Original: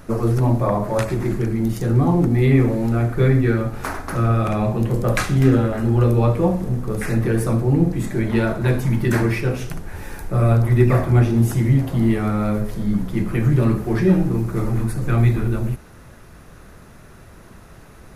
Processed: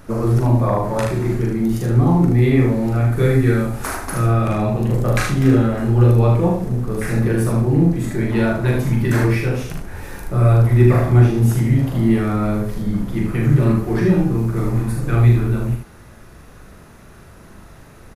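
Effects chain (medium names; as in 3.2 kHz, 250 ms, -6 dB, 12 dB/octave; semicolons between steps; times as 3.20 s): 3.12–4.26 s: peaking EQ 10 kHz +9.5 dB 1.4 oct; on a send: early reflections 41 ms -4 dB, 76 ms -5.5 dB; on the sum: trim -1 dB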